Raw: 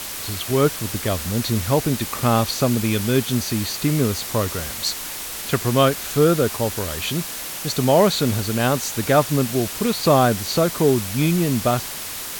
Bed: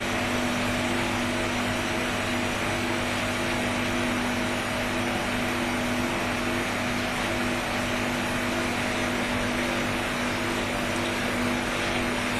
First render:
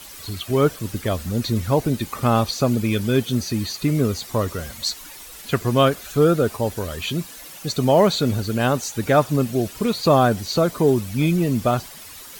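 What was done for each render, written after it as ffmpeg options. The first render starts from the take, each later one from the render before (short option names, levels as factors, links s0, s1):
-af "afftdn=nr=12:nf=-31"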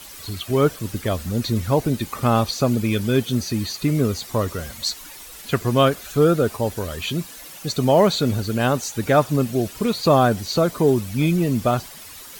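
-af anull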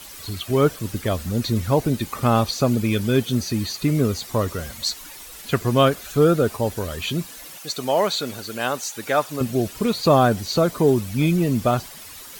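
-filter_complex "[0:a]asettb=1/sr,asplit=3[s0][s1][s2];[s0]atrim=end=7.584[s3];[s1]atrim=start=7.58:end=9.41,asetpts=PTS-STARTPTS,afade=t=in:d=0.004:c=qsin,afade=t=out:st=1.826:d=0.004:c=qsin,highpass=f=740:p=1[s4];[s2]atrim=start=9.406[s5];[s3][s4]acrossfade=d=0.004:c1=hsin:c2=qsin[s6];[s6][s5]acrossfade=d=0.004:c1=qsin:c2=hsin"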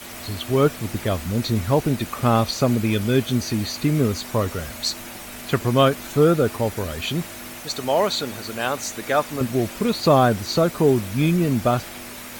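-filter_complex "[1:a]volume=0.237[s0];[0:a][s0]amix=inputs=2:normalize=0"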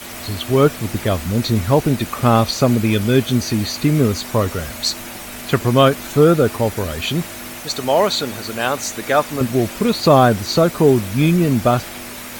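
-af "volume=1.68,alimiter=limit=0.891:level=0:latency=1"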